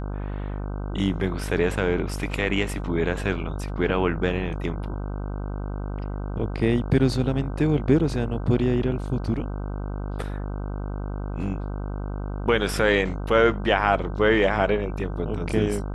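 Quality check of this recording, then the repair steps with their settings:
buzz 50 Hz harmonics 31 -30 dBFS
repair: de-hum 50 Hz, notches 31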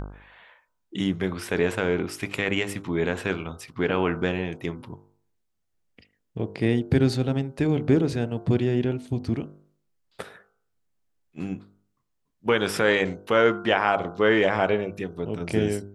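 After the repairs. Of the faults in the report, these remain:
none

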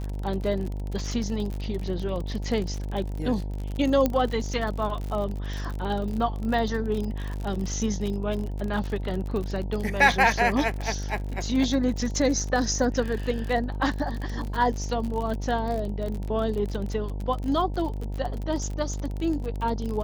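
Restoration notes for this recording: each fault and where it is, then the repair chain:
buzz 50 Hz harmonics 19 -31 dBFS
crackle 47/s -30 dBFS
4.06 pop -10 dBFS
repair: de-click; de-hum 50 Hz, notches 19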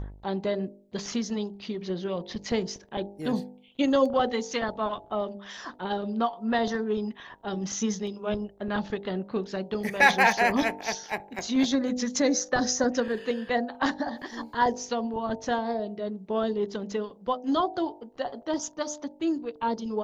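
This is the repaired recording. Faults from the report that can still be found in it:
4.06 pop

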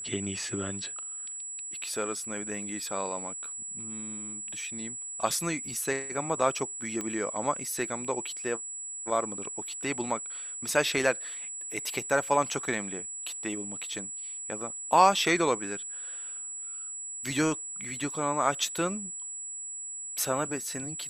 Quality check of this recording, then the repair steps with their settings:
tone 7800 Hz -36 dBFS
7.01 pop -19 dBFS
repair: de-click; notch 7800 Hz, Q 30

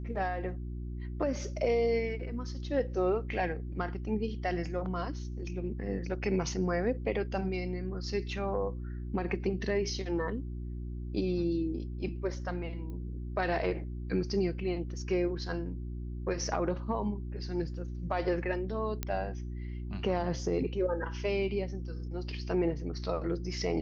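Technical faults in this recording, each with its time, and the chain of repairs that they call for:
hum 60 Hz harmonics 6 -38 dBFS
12.9 pop -33 dBFS
19.03 pop -17 dBFS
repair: de-click; de-hum 60 Hz, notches 6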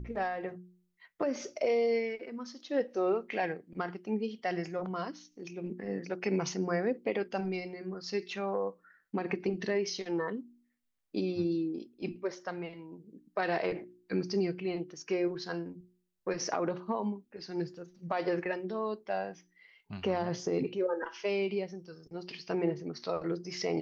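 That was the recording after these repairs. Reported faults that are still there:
none

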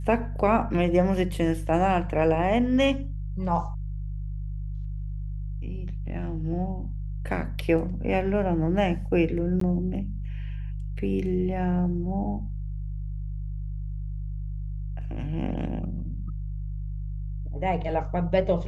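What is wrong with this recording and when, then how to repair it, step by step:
hum 50 Hz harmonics 3 -32 dBFS
9.6–9.61 gap 13 ms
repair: de-hum 50 Hz, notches 3; interpolate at 9.6, 13 ms

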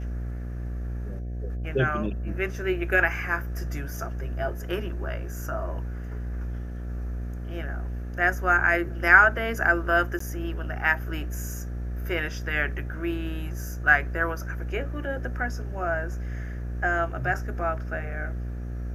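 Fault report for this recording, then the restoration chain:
buzz 60 Hz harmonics 12 -32 dBFS
10.19–10.2 gap 14 ms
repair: de-hum 60 Hz, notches 12; interpolate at 10.19, 14 ms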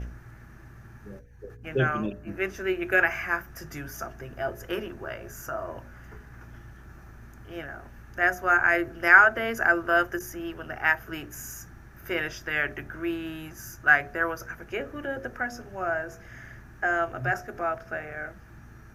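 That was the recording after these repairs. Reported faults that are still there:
none

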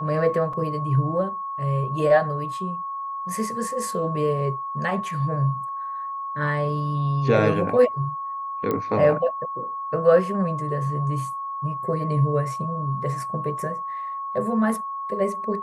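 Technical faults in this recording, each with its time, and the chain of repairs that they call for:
tone 1100 Hz -28 dBFS
0.53 gap 4.2 ms
8.71 pop -13 dBFS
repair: de-click; notch 1100 Hz, Q 30; interpolate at 0.53, 4.2 ms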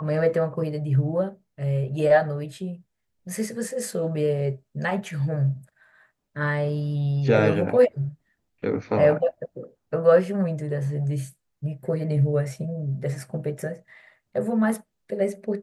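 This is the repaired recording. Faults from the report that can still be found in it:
none

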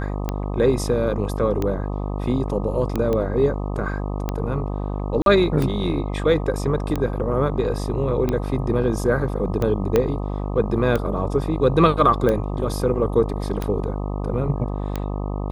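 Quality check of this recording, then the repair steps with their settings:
buzz 50 Hz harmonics 25 -26 dBFS
tick 45 rpm -11 dBFS
3.13 pop -13 dBFS
5.22–5.26 gap 42 ms
9.96 pop -6 dBFS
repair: de-click; de-hum 50 Hz, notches 25; interpolate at 5.22, 42 ms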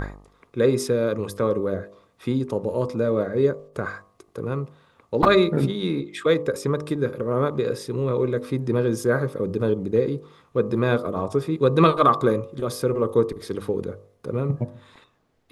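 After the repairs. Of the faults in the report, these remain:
9.96 pop

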